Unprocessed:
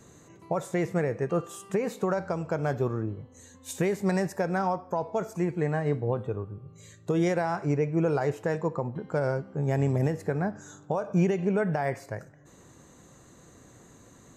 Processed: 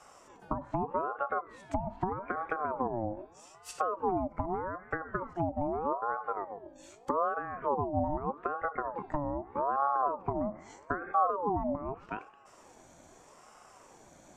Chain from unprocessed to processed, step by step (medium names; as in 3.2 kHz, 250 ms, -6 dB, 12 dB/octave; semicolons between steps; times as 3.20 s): low-pass that closes with the level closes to 350 Hz, closed at -24 dBFS; ring modulator with a swept carrier 700 Hz, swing 40%, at 0.81 Hz